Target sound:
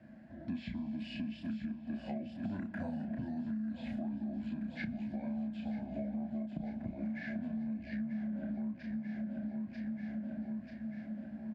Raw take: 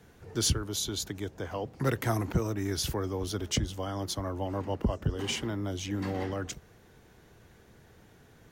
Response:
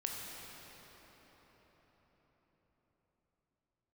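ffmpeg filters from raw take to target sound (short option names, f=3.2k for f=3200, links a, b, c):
-filter_complex "[0:a]asplit=2[a][b];[b]adelay=24,volume=-4dB[c];[a][c]amix=inputs=2:normalize=0,aecho=1:1:693|1386|2079|2772|3465|4158:0.316|0.171|0.0922|0.0498|0.0269|0.0145,asplit=2[d][e];[1:a]atrim=start_sample=2205,lowpass=7.9k[f];[e][f]afir=irnorm=-1:irlink=0,volume=-13dB[g];[d][g]amix=inputs=2:normalize=0,acrossover=split=5400[h][i];[i]acompressor=threshold=-41dB:ratio=4:attack=1:release=60[j];[h][j]amix=inputs=2:normalize=0,asplit=3[k][l][m];[k]bandpass=f=300:t=q:w=8,volume=0dB[n];[l]bandpass=f=870:t=q:w=8,volume=-6dB[o];[m]bandpass=f=2.24k:t=q:w=8,volume=-9dB[p];[n][o][p]amix=inputs=3:normalize=0,asplit=2[q][r];[r]volume=33dB,asoftclip=hard,volume=-33dB,volume=-11.5dB[s];[q][s]amix=inputs=2:normalize=0,asetrate=32546,aresample=44100,acompressor=threshold=-46dB:ratio=10,volume=10dB"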